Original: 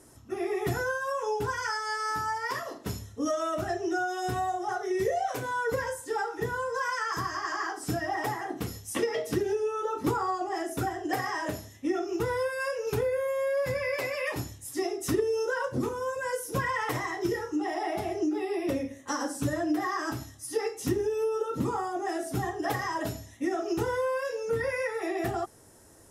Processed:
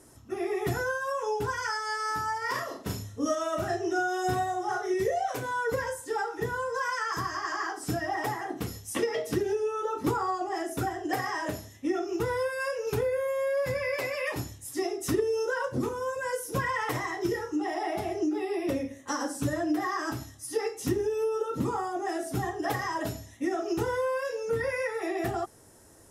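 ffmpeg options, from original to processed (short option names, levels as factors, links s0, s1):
-filter_complex "[0:a]asettb=1/sr,asplit=3[s0][s1][s2];[s0]atrim=end=2.384[s3];[s1]atrim=start=2.38:end=4.94,asetpts=PTS-STARTPTS,afade=t=in:d=0.004:c=qsin,afade=t=out:st=2.556:d=0.004:c=qsin,asplit=2[s4][s5];[s5]adelay=38,volume=0.668[s6];[s4][s6]amix=inputs=2:normalize=0,atrim=end_sample=112896[s7];[s2]atrim=start=4.936[s8];[s3][s7]acrossfade=d=0.004:c1=hsin:c2=qsin[s9];[s9][s8]acrossfade=d=0.004:c1=qsin:c2=hsin"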